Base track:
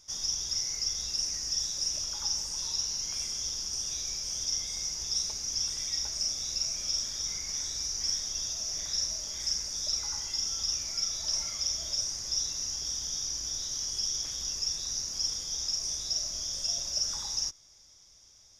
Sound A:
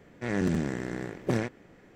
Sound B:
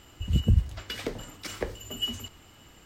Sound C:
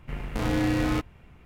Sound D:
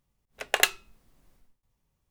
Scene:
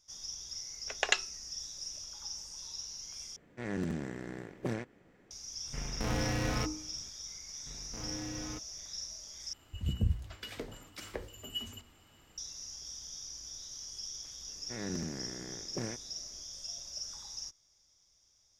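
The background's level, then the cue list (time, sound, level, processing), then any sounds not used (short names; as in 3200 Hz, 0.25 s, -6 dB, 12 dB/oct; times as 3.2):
base track -11 dB
0.49 add D -5.5 dB + elliptic low-pass 7300 Hz
3.36 replace with A -8 dB
5.65 add C -5 dB + de-hum 51.46 Hz, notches 28
7.58 add C -17 dB
9.53 replace with B -8 dB + notches 60/120/180/240/300/360/420/480/540 Hz
14.48 add A -11 dB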